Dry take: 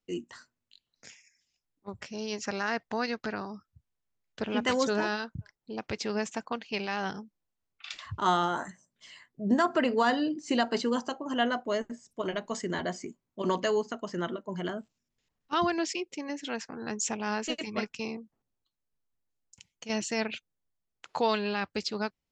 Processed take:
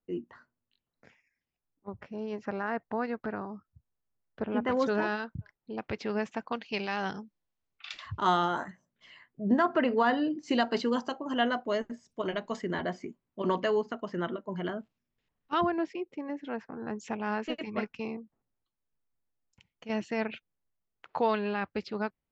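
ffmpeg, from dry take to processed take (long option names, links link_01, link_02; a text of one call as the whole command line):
ffmpeg -i in.wav -af "asetnsamples=nb_out_samples=441:pad=0,asendcmd='4.77 lowpass f 2700;6.48 lowpass f 4900;8.64 lowpass f 2700;10.43 lowpass f 4600;12.56 lowpass f 3000;15.61 lowpass f 1400;16.96 lowpass f 2200',lowpass=1400" out.wav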